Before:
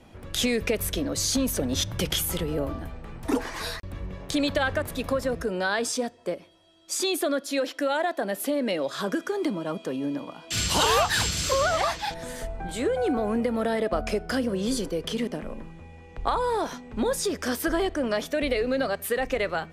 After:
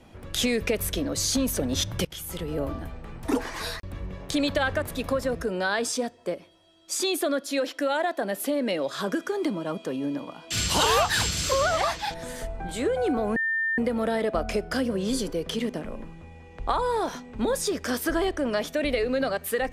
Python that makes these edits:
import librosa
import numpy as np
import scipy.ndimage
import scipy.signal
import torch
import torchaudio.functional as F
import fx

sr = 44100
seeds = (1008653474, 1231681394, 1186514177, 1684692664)

y = fx.edit(x, sr, fx.fade_in_from(start_s=2.05, length_s=0.61, floor_db=-22.5),
    fx.insert_tone(at_s=13.36, length_s=0.42, hz=1800.0, db=-23.0), tone=tone)